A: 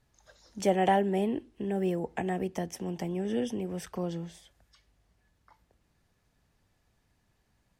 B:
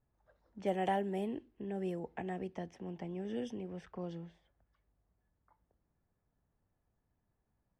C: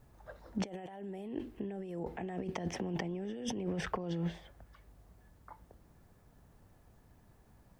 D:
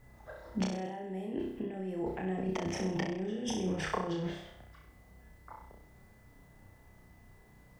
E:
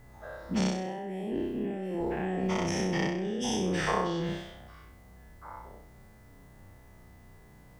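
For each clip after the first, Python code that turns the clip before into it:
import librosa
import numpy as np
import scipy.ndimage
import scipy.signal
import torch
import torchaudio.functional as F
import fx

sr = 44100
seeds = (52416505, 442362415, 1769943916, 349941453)

y1 = fx.env_lowpass(x, sr, base_hz=1200.0, full_db=-23.0)
y1 = y1 * librosa.db_to_amplitude(-8.5)
y2 = fx.over_compress(y1, sr, threshold_db=-49.0, ratio=-1.0)
y2 = y2 * librosa.db_to_amplitude(9.5)
y3 = y2 + 10.0 ** (-71.0 / 20.0) * np.sin(2.0 * np.pi * 2000.0 * np.arange(len(y2)) / sr)
y3 = fx.room_flutter(y3, sr, wall_m=5.5, rt60_s=0.61)
y3 = y3 * librosa.db_to_amplitude(1.0)
y4 = fx.spec_dilate(y3, sr, span_ms=120)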